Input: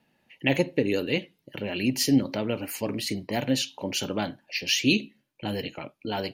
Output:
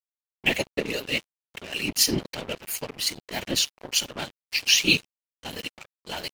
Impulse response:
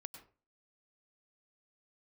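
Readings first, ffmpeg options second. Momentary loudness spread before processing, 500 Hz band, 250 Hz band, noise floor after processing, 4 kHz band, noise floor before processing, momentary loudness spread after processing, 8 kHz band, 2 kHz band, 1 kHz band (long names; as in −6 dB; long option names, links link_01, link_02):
11 LU, −4.5 dB, −7.5 dB, below −85 dBFS, +5.5 dB, −71 dBFS, 17 LU, +7.0 dB, +4.0 dB, −3.0 dB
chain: -af "afftfilt=real='hypot(re,im)*cos(2*PI*random(0))':imag='hypot(re,im)*sin(2*PI*random(1))':win_size=512:overlap=0.75,tiltshelf=frequency=1400:gain=-6.5,aeval=exprs='sgn(val(0))*max(abs(val(0))-0.0075,0)':channel_layout=same,volume=8.5dB"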